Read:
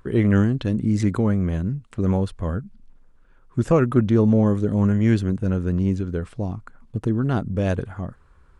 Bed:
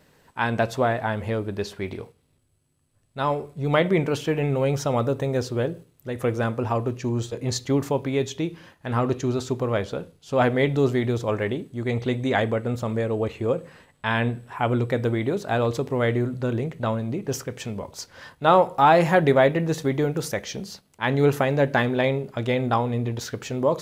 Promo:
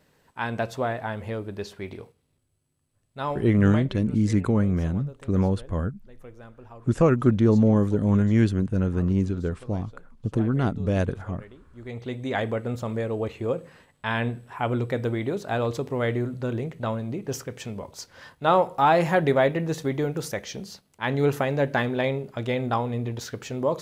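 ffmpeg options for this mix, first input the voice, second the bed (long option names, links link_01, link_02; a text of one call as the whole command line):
ffmpeg -i stem1.wav -i stem2.wav -filter_complex "[0:a]adelay=3300,volume=-1.5dB[link_01];[1:a]volume=13.5dB,afade=type=out:start_time=3.49:duration=0.43:silence=0.149624,afade=type=in:start_time=11.62:duration=0.93:silence=0.11885[link_02];[link_01][link_02]amix=inputs=2:normalize=0" out.wav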